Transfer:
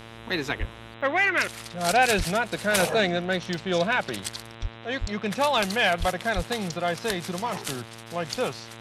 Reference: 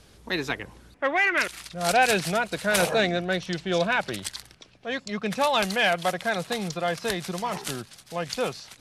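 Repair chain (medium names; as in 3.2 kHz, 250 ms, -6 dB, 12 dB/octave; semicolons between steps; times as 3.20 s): de-hum 114 Hz, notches 35; de-plosive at 0.59/2.17/4.61/5.00/5.99/6.35 s; interpolate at 1.01/3.54/5.58 s, 1.2 ms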